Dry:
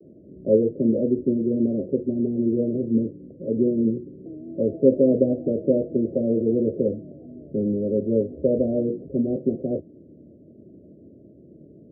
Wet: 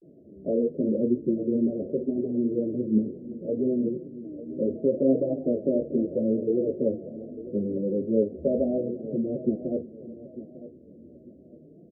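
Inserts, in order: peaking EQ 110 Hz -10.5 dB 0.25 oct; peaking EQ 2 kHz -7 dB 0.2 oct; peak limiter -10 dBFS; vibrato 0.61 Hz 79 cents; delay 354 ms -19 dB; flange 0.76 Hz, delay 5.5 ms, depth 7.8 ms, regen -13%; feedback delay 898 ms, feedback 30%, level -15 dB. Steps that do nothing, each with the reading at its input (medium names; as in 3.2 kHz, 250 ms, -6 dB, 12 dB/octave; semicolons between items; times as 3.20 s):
peaking EQ 2 kHz: input has nothing above 680 Hz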